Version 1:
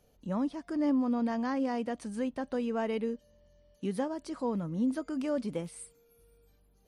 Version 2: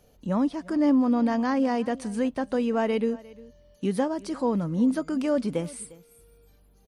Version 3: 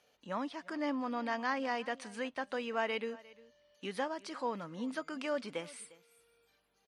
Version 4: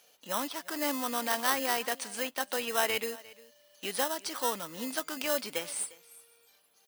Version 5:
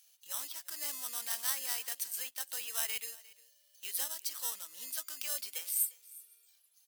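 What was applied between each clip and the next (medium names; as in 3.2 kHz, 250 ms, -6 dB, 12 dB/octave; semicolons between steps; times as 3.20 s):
delay 353 ms -21 dB; trim +7 dB
band-pass filter 2.3 kHz, Q 0.75
in parallel at -5.5 dB: sample-and-hold 19×; on the sum: RIAA curve recording; trim +2.5 dB
differentiator; careless resampling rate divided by 2×, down filtered, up zero stuff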